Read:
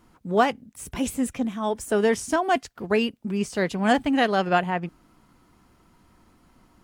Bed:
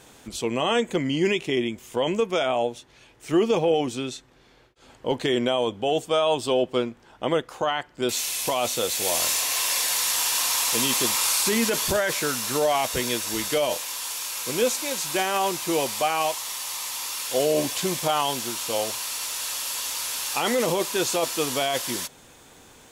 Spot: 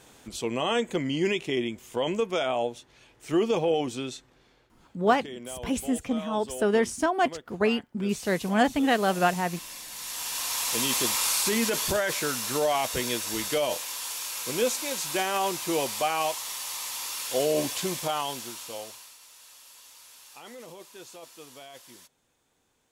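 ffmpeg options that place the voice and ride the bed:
-filter_complex "[0:a]adelay=4700,volume=-2dB[a];[1:a]volume=10.5dB,afade=t=out:st=4.28:d=0.74:silence=0.211349,afade=t=in:st=9.9:d=1.03:silence=0.199526,afade=t=out:st=17.67:d=1.5:silence=0.11885[b];[a][b]amix=inputs=2:normalize=0"

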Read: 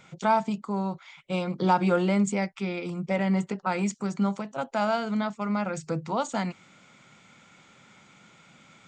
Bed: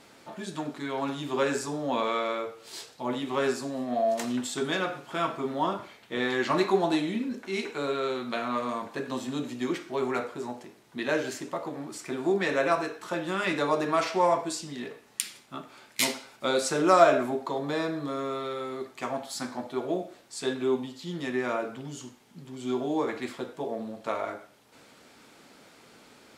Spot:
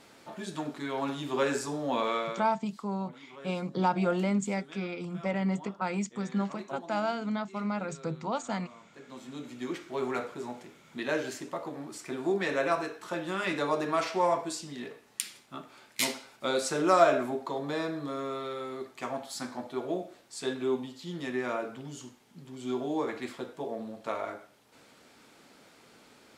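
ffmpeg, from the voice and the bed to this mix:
-filter_complex "[0:a]adelay=2150,volume=-4.5dB[a];[1:a]volume=16dB,afade=t=out:st=2.14:d=0.39:silence=0.112202,afade=t=in:st=8.92:d=1.12:silence=0.133352[b];[a][b]amix=inputs=2:normalize=0"

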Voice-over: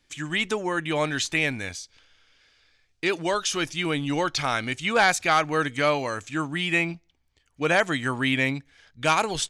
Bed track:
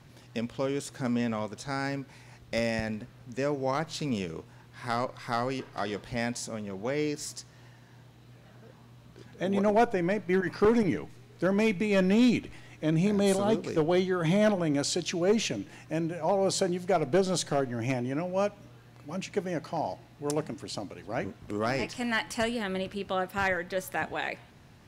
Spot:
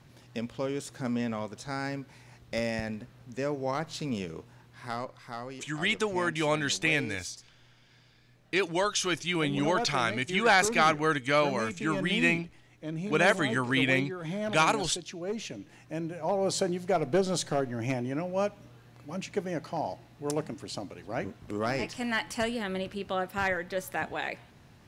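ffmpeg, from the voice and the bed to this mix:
-filter_complex "[0:a]adelay=5500,volume=-2.5dB[a];[1:a]volume=6.5dB,afade=t=out:st=4.53:d=0.8:silence=0.421697,afade=t=in:st=15.37:d=1.23:silence=0.375837[b];[a][b]amix=inputs=2:normalize=0"

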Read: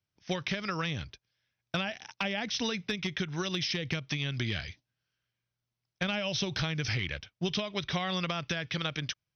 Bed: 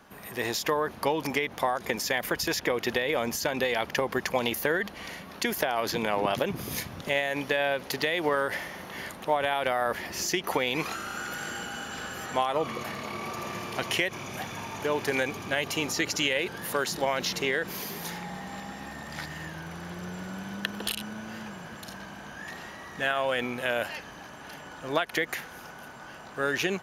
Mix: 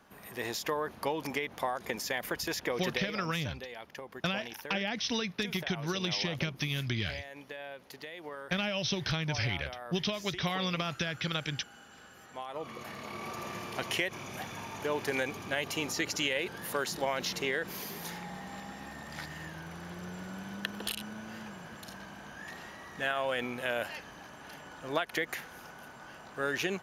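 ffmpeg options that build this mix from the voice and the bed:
-filter_complex "[0:a]adelay=2500,volume=-0.5dB[a];[1:a]volume=6.5dB,afade=t=out:st=2.88:d=0.26:silence=0.281838,afade=t=in:st=12.33:d=0.97:silence=0.237137[b];[a][b]amix=inputs=2:normalize=0"

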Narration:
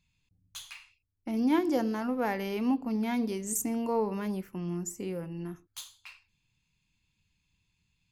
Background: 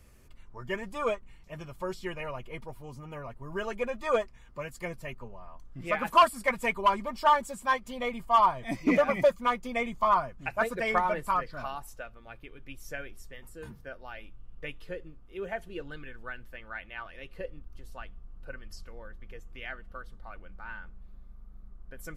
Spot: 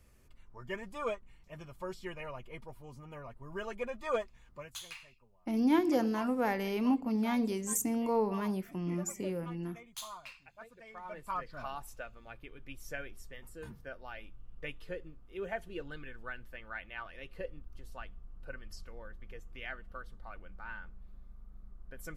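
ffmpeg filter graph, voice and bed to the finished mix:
-filter_complex "[0:a]adelay=4200,volume=-1dB[a];[1:a]volume=15dB,afade=t=out:st=4.51:d=0.3:silence=0.133352,afade=t=in:st=10.97:d=0.89:silence=0.0891251[b];[a][b]amix=inputs=2:normalize=0"

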